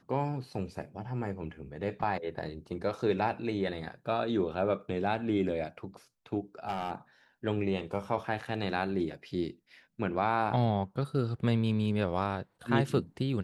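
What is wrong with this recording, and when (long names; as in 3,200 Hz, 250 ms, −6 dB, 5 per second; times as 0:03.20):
0:06.67–0:06.92: clipping −28 dBFS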